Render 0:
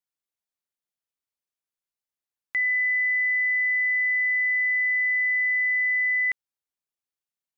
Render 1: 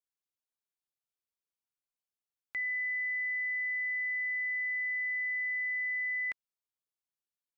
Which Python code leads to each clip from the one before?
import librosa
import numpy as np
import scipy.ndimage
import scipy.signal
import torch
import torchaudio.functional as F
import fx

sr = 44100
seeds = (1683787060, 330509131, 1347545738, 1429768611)

y = fx.notch(x, sr, hz=1900.0, q=8.3)
y = y * 10.0 ** (-6.5 / 20.0)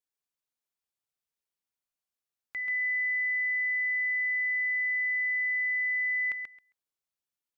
y = fx.echo_feedback(x, sr, ms=134, feedback_pct=15, wet_db=-4.5)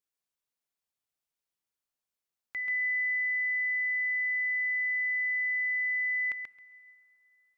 y = fx.rev_plate(x, sr, seeds[0], rt60_s=4.2, hf_ratio=0.6, predelay_ms=0, drr_db=19.5)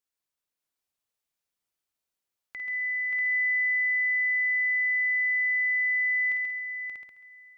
y = fx.dynamic_eq(x, sr, hz=1600.0, q=0.95, threshold_db=-45.0, ratio=4.0, max_db=-6)
y = fx.echo_multitap(y, sr, ms=(48, 51, 130, 579, 639), db=(-16.5, -7.5, -13.5, -4.5, -5.5))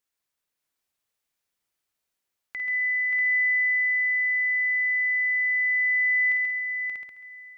y = fx.peak_eq(x, sr, hz=1900.0, db=2.5, octaves=0.77)
y = fx.rider(y, sr, range_db=5, speed_s=2.0)